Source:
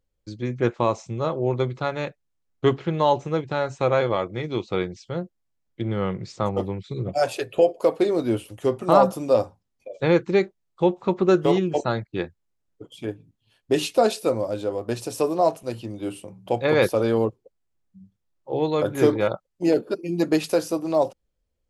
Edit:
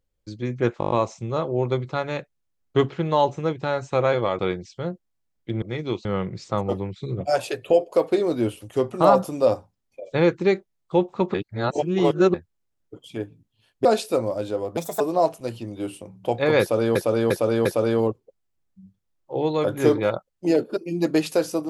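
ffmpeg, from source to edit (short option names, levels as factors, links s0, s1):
-filter_complex "[0:a]asplit=18[s0][s1][s2][s3][s4][s5][s6][s7][s8][s9][s10][s11][s12][s13][s14][s15][s16][s17];[s0]atrim=end=0.812[s18];[s1]atrim=start=0.788:end=0.812[s19];[s2]atrim=start=0.788:end=0.812[s20];[s3]atrim=start=0.788:end=0.812[s21];[s4]atrim=start=0.788:end=0.812[s22];[s5]atrim=start=0.788:end=0.812[s23];[s6]atrim=start=0.788:end=4.272[s24];[s7]atrim=start=4.698:end=5.932[s25];[s8]atrim=start=4.268:end=4.702[s26];[s9]atrim=start=5.928:end=11.222[s27];[s10]atrim=start=11.218:end=12.222,asetpts=PTS-STARTPTS,areverse[s28];[s11]atrim=start=12.218:end=13.732[s29];[s12]atrim=start=13.978:end=14.904[s30];[s13]atrim=start=14.9:end=15.23,asetpts=PTS-STARTPTS,asetrate=62181,aresample=44100,atrim=end_sample=10321,asetpts=PTS-STARTPTS[s31];[s14]atrim=start=15.226:end=17.182[s32];[s15]atrim=start=16.828:end=17.182[s33];[s16]atrim=start=16.828:end=17.182[s34];[s17]atrim=start=16.828[s35];[s18][s19]acrossfade=d=0.004:c1=hsin:c2=hsin[s36];[s36][s20]acrossfade=d=0.004:c1=hsin:c2=hsin[s37];[s37][s21]acrossfade=d=0.004:c1=hsin:c2=hsin[s38];[s38][s22]acrossfade=d=0.004:c1=hsin:c2=hsin[s39];[s39][s23]acrossfade=d=0.004:c1=hsin:c2=hsin[s40];[s40][s24]acrossfade=d=0.004:c1=hsin:c2=hsin[s41];[s41][s25]acrossfade=d=0.004:c1=hsin:c2=hsin[s42];[s42][s26]acrossfade=d=0.004:c1=hsin:c2=hsin[s43];[s43][s27]acrossfade=d=0.004:c1=hsin:c2=hsin[s44];[s44][s28]acrossfade=d=0.004:c1=hsin:c2=hsin[s45];[s45][s29]acrossfade=d=0.004:c1=hsin:c2=hsin[s46];[s46][s30]acrossfade=d=0.004:c1=hsin:c2=hsin[s47];[s47][s31]acrossfade=d=0.004:c1=hsin:c2=hsin[s48];[s48][s32]acrossfade=d=0.004:c1=hsin:c2=hsin[s49];[s49][s33]acrossfade=d=0.004:c1=hsin:c2=hsin[s50];[s50][s34]acrossfade=d=0.004:c1=hsin:c2=hsin[s51];[s51][s35]acrossfade=d=0.004:c1=hsin:c2=hsin"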